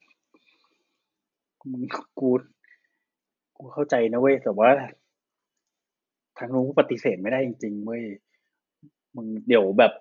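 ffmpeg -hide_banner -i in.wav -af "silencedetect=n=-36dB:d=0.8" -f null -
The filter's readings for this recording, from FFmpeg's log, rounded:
silence_start: 0.00
silence_end: 1.66 | silence_duration: 1.66
silence_start: 2.40
silence_end: 3.60 | silence_duration: 1.19
silence_start: 4.90
silence_end: 6.37 | silence_duration: 1.47
silence_start: 8.15
silence_end: 9.15 | silence_duration: 1.00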